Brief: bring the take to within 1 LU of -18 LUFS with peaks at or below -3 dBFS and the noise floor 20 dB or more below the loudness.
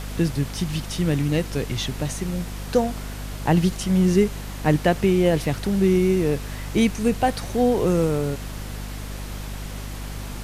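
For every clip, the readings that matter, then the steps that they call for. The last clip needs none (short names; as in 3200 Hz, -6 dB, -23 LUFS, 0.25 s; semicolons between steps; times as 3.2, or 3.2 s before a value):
hum 50 Hz; harmonics up to 250 Hz; hum level -31 dBFS; noise floor -33 dBFS; noise floor target -43 dBFS; loudness -22.5 LUFS; peak -6.0 dBFS; loudness target -18.0 LUFS
-> notches 50/100/150/200/250 Hz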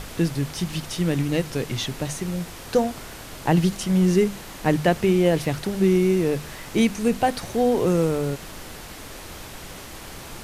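hum none; noise floor -39 dBFS; noise floor target -43 dBFS
-> noise print and reduce 6 dB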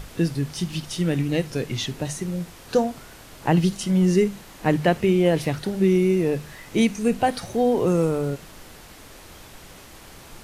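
noise floor -45 dBFS; loudness -23.0 LUFS; peak -6.5 dBFS; loudness target -18.0 LUFS
-> gain +5 dB; limiter -3 dBFS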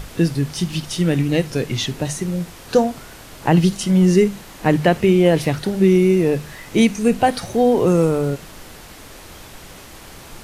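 loudness -18.0 LUFS; peak -3.0 dBFS; noise floor -40 dBFS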